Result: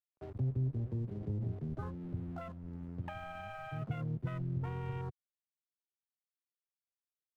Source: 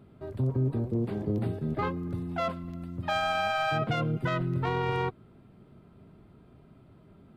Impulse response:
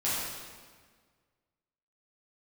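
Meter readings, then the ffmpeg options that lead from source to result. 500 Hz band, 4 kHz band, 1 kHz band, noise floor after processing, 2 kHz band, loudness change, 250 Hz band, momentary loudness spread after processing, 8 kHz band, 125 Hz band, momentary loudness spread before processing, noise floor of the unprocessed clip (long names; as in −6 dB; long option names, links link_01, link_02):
−15.0 dB, −23.0 dB, −17.0 dB, below −85 dBFS, −17.5 dB, −9.5 dB, −10.0 dB, 9 LU, below −15 dB, −5.5 dB, 7 LU, −56 dBFS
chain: -filter_complex "[0:a]afwtdn=0.0178,aeval=exprs='sgn(val(0))*max(abs(val(0))-0.00355,0)':channel_layout=same,acrossover=split=140[link_01][link_02];[link_02]acompressor=threshold=-43dB:ratio=6[link_03];[link_01][link_03]amix=inputs=2:normalize=0,volume=-1.5dB"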